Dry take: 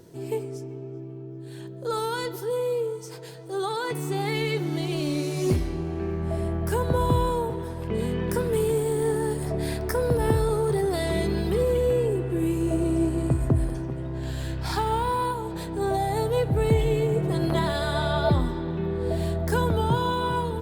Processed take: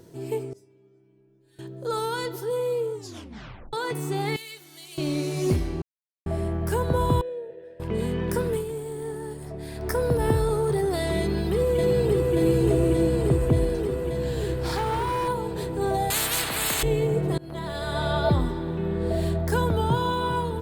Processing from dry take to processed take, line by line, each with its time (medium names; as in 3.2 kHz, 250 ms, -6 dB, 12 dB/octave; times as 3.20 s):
0.53–1.59 s: inharmonic resonator 100 Hz, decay 0.75 s, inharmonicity 0.002
2.93 s: tape stop 0.80 s
4.36–4.98 s: pre-emphasis filter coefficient 0.97
5.82–6.26 s: mute
7.21–7.80 s: vowel filter e
8.49–9.88 s: dip -8.5 dB, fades 0.15 s
11.20–12.36 s: echo throw 580 ms, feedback 80%, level -2 dB
14.56–15.28 s: overload inside the chain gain 22.5 dB
16.10–16.83 s: spectrum-flattening compressor 10:1
17.38–18.10 s: fade in, from -23.5 dB
18.79–19.24 s: reverb throw, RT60 0.84 s, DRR 4 dB